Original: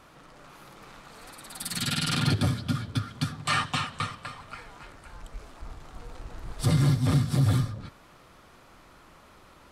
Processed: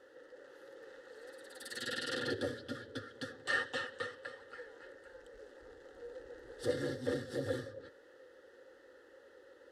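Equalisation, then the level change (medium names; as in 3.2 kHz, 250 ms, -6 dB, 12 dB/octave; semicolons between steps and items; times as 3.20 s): vowel filter e; treble shelf 7.5 kHz +4 dB; static phaser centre 650 Hz, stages 6; +12.5 dB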